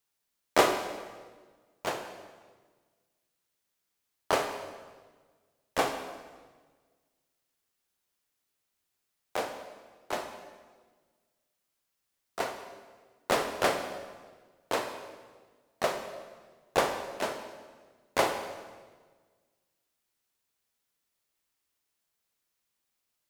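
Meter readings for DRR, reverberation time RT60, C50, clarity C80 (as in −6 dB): 6.0 dB, 1.4 s, 7.5 dB, 9.0 dB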